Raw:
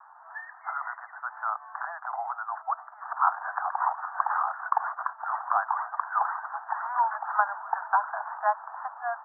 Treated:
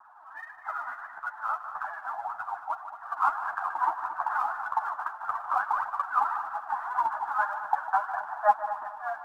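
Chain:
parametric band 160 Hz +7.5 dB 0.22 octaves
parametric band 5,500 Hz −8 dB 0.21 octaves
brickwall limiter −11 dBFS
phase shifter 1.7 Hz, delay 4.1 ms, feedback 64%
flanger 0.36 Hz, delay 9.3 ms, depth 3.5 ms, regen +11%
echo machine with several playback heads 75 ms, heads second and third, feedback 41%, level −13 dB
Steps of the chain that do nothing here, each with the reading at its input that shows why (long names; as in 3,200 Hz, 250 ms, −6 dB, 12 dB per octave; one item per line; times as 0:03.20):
parametric band 160 Hz: nothing at its input below 570 Hz
parametric band 5,500 Hz: nothing at its input above 1,900 Hz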